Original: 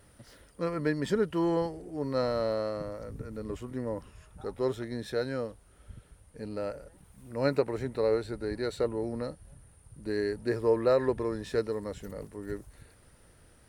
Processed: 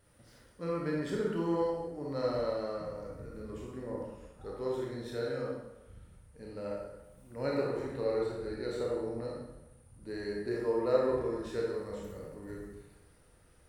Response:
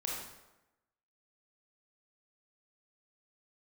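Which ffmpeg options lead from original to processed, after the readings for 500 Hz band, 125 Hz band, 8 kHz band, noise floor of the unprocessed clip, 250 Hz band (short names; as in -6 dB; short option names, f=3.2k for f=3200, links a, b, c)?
-3.5 dB, -4.5 dB, n/a, -59 dBFS, -4.0 dB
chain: -filter_complex "[1:a]atrim=start_sample=2205[a];[0:a][a]afir=irnorm=-1:irlink=0,volume=-6.5dB"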